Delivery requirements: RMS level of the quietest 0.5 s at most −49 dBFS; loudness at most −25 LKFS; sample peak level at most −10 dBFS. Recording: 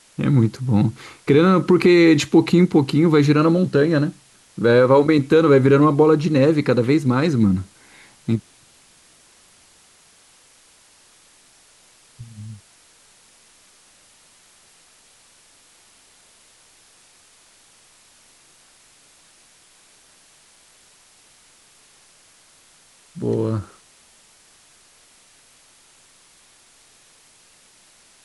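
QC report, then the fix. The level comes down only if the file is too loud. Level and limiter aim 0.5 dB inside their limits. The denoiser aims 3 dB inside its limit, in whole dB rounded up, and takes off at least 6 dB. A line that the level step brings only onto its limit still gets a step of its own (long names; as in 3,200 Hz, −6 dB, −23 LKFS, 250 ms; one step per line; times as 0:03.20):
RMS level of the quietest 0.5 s −53 dBFS: in spec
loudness −17.0 LKFS: out of spec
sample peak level −5.0 dBFS: out of spec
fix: level −8.5 dB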